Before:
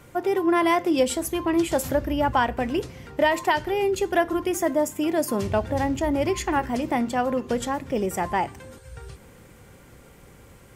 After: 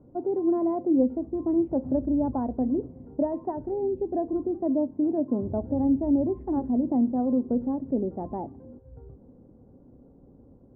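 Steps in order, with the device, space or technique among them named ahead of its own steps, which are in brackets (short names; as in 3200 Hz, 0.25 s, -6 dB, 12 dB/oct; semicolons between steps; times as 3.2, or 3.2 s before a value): under water (LPF 720 Hz 24 dB/oct; bell 260 Hz +12 dB 0.52 oct); 3.79–4.36 bell 1300 Hz -14.5 dB 0.35 oct; gain -6 dB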